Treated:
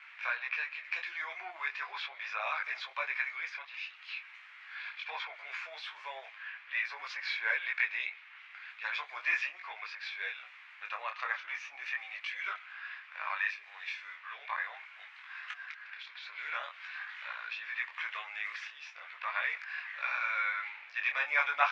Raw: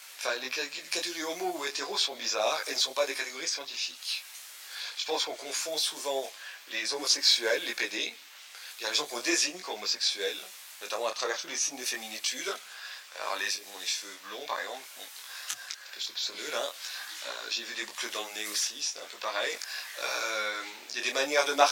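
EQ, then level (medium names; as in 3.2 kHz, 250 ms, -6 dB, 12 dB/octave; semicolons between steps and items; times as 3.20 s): high-pass 1.1 kHz 24 dB/octave; resonant low-pass 2.3 kHz, resonance Q 3; tilt EQ -5.5 dB/octave; 0.0 dB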